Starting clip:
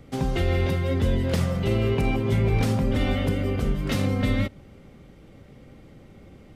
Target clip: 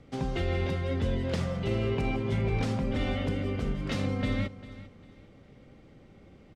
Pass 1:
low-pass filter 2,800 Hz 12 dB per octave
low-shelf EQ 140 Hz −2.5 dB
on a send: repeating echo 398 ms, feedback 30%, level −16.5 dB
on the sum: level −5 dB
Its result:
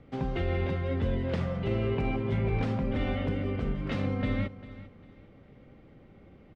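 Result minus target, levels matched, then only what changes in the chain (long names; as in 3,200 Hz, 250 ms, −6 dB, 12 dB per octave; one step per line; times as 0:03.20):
8,000 Hz band −13.0 dB
change: low-pass filter 6,800 Hz 12 dB per octave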